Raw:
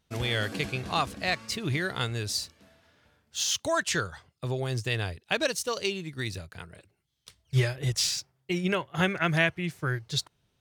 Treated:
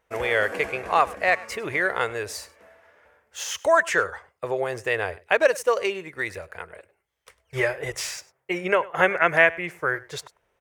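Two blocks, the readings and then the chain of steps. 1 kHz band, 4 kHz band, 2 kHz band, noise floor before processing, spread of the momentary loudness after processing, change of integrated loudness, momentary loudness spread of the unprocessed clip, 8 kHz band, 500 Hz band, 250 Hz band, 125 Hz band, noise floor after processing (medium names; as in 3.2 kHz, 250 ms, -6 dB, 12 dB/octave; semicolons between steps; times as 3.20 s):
+9.0 dB, -5.0 dB, +8.0 dB, -75 dBFS, 17 LU, +5.5 dB, 9 LU, -3.0 dB, +9.0 dB, -2.5 dB, -10.0 dB, -73 dBFS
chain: graphic EQ 125/250/500/1000/2000/4000 Hz -11/-7/+12/+6/+10/-11 dB; delay 100 ms -21 dB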